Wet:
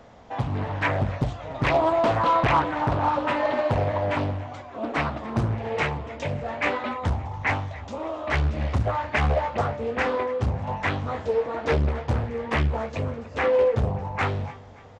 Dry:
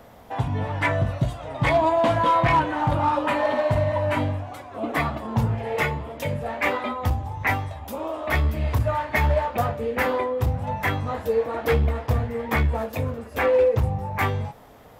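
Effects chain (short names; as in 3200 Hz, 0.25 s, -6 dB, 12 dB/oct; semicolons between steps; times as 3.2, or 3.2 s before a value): downsampling 16000 Hz; feedback echo 0.287 s, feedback 40%, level -19 dB; Doppler distortion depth 0.99 ms; gain -1.5 dB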